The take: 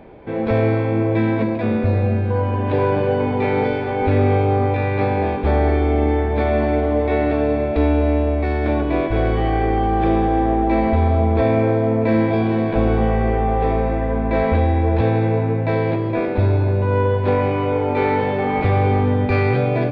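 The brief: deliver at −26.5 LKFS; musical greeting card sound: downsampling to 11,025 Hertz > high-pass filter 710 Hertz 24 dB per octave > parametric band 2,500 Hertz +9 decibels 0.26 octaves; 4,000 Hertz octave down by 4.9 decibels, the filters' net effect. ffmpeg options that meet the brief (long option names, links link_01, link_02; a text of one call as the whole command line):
ffmpeg -i in.wav -af "equalizer=frequency=4000:width_type=o:gain=-8.5,aresample=11025,aresample=44100,highpass=frequency=710:width=0.5412,highpass=frequency=710:width=1.3066,equalizer=frequency=2500:width_type=o:width=0.26:gain=9,volume=0.5dB" out.wav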